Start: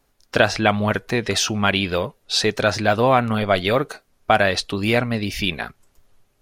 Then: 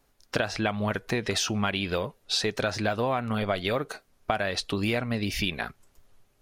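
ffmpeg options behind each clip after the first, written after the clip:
ffmpeg -i in.wav -af "acompressor=threshold=-22dB:ratio=5,volume=-2dB" out.wav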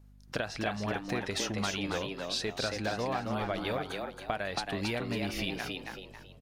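ffmpeg -i in.wav -filter_complex "[0:a]aeval=exprs='val(0)+0.00398*(sin(2*PI*50*n/s)+sin(2*PI*2*50*n/s)/2+sin(2*PI*3*50*n/s)/3+sin(2*PI*4*50*n/s)/4+sin(2*PI*5*50*n/s)/5)':channel_layout=same,asplit=6[link_01][link_02][link_03][link_04][link_05][link_06];[link_02]adelay=274,afreqshift=89,volume=-4dB[link_07];[link_03]adelay=548,afreqshift=178,volume=-12.9dB[link_08];[link_04]adelay=822,afreqshift=267,volume=-21.7dB[link_09];[link_05]adelay=1096,afreqshift=356,volume=-30.6dB[link_10];[link_06]adelay=1370,afreqshift=445,volume=-39.5dB[link_11];[link_01][link_07][link_08][link_09][link_10][link_11]amix=inputs=6:normalize=0,volume=-7dB" out.wav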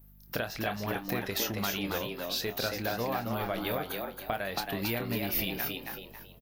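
ffmpeg -i in.wav -filter_complex "[0:a]asplit=2[link_01][link_02];[link_02]adelay=26,volume=-10dB[link_03];[link_01][link_03]amix=inputs=2:normalize=0,aexciter=amount=12.3:drive=8.3:freq=12000" out.wav

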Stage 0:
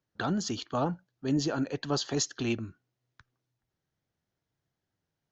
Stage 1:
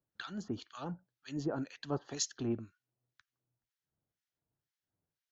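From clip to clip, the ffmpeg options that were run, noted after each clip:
ffmpeg -i in.wav -filter_complex "[0:a]acrossover=split=1400[link_01][link_02];[link_01]aeval=exprs='val(0)*(1-1/2+1/2*cos(2*PI*2*n/s))':channel_layout=same[link_03];[link_02]aeval=exprs='val(0)*(1-1/2-1/2*cos(2*PI*2*n/s))':channel_layout=same[link_04];[link_03][link_04]amix=inputs=2:normalize=0,volume=-3.5dB" out.wav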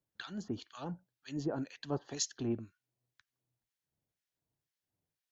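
ffmpeg -i in.wav -af "equalizer=frequency=1300:width_type=o:width=0.36:gain=-4.5" out.wav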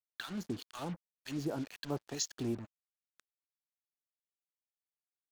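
ffmpeg -i in.wav -af "acrusher=bits=7:mix=0:aa=0.5,acompressor=threshold=-46dB:ratio=1.5,volume=4.5dB" out.wav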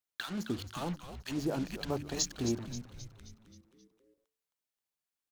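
ffmpeg -i in.wav -filter_complex "[0:a]bandreject=frequency=72.83:width_type=h:width=4,bandreject=frequency=145.66:width_type=h:width=4,bandreject=frequency=218.49:width_type=h:width=4,bandreject=frequency=291.32:width_type=h:width=4,bandreject=frequency=364.15:width_type=h:width=4,asplit=2[link_01][link_02];[link_02]asplit=6[link_03][link_04][link_05][link_06][link_07][link_08];[link_03]adelay=265,afreqshift=-110,volume=-10dB[link_09];[link_04]adelay=530,afreqshift=-220,volume=-15.5dB[link_10];[link_05]adelay=795,afreqshift=-330,volume=-21dB[link_11];[link_06]adelay=1060,afreqshift=-440,volume=-26.5dB[link_12];[link_07]adelay=1325,afreqshift=-550,volume=-32.1dB[link_13];[link_08]adelay=1590,afreqshift=-660,volume=-37.6dB[link_14];[link_09][link_10][link_11][link_12][link_13][link_14]amix=inputs=6:normalize=0[link_15];[link_01][link_15]amix=inputs=2:normalize=0,volume=3.5dB" out.wav

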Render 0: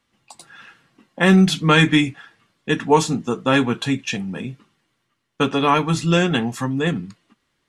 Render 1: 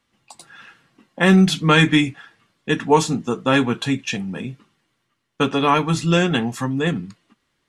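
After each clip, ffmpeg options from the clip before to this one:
ffmpeg -i in.wav -af anull out.wav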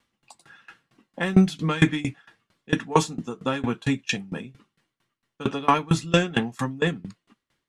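ffmpeg -i in.wav -filter_complex "[0:a]asplit=2[link_01][link_02];[link_02]asoftclip=type=tanh:threshold=-16dB,volume=-9.5dB[link_03];[link_01][link_03]amix=inputs=2:normalize=0,aeval=exprs='val(0)*pow(10,-23*if(lt(mod(4.4*n/s,1),2*abs(4.4)/1000),1-mod(4.4*n/s,1)/(2*abs(4.4)/1000),(mod(4.4*n/s,1)-2*abs(4.4)/1000)/(1-2*abs(4.4)/1000))/20)':channel_layout=same" out.wav

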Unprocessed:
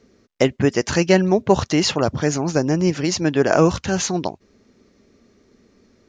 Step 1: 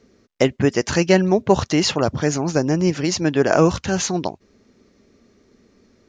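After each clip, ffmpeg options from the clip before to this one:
ffmpeg -i in.wav -af anull out.wav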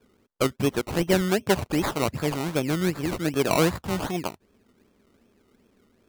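ffmpeg -i in.wav -af "acrusher=samples=21:mix=1:aa=0.000001:lfo=1:lforange=12.6:lforate=2.6,volume=-6.5dB" out.wav

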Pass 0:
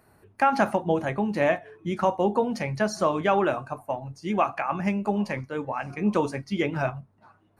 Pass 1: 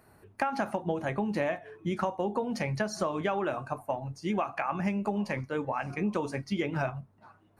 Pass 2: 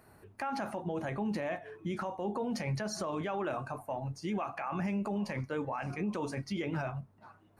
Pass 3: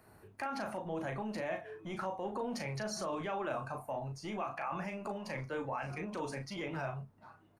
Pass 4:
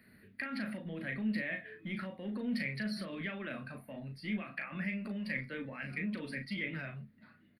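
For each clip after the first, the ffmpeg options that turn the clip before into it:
ffmpeg -i in.wav -af "acompressor=threshold=-26dB:ratio=10" out.wav
ffmpeg -i in.wav -af "alimiter=level_in=3dB:limit=-24dB:level=0:latency=1:release=20,volume=-3dB" out.wav
ffmpeg -i in.wav -filter_complex "[0:a]acrossover=split=420|1000[link_01][link_02][link_03];[link_01]asoftclip=type=tanh:threshold=-39.5dB[link_04];[link_04][link_02][link_03]amix=inputs=3:normalize=0,asplit=2[link_05][link_06];[link_06]adelay=37,volume=-6.5dB[link_07];[link_05][link_07]amix=inputs=2:normalize=0,volume=-2dB" out.wav
ffmpeg -i in.wav -af "firequalizer=gain_entry='entry(120,0);entry(220,14);entry(350,-2);entry(550,-1);entry(830,-15);entry(1900,15);entry(2700,7);entry(4600,8);entry(6600,-30);entry(9400,2)':delay=0.05:min_phase=1,volume=-5dB" out.wav

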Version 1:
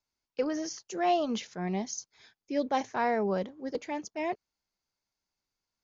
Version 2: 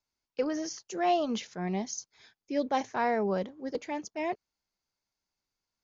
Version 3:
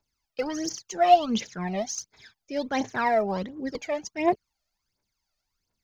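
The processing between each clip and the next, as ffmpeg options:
ffmpeg -i in.wav -af anull out.wav
ffmpeg -i in.wav -af "aphaser=in_gain=1:out_gain=1:delay=1.7:decay=0.73:speed=1.4:type=triangular,volume=2.5dB" out.wav

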